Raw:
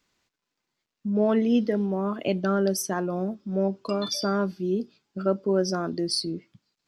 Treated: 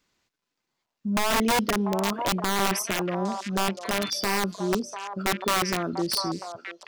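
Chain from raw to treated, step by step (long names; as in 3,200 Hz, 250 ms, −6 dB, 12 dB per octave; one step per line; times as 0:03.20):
wrap-around overflow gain 17.5 dB
echo through a band-pass that steps 694 ms, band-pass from 800 Hz, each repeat 1.4 octaves, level −4 dB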